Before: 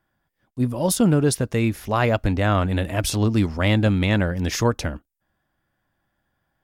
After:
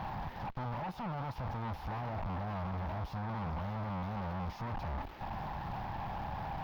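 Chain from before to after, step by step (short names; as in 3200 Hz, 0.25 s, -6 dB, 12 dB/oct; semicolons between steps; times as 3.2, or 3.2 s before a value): infinite clipping; EQ curve 190 Hz 0 dB, 400 Hz -20 dB, 860 Hz +11 dB, 1800 Hz -21 dB, 5100 Hz -5 dB, 8300 Hz -11 dB, 13000 Hz +4 dB; limiter -25 dBFS, peak gain reduction 15 dB; tube stage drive 38 dB, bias 0.45; air absorption 300 m; gain +3 dB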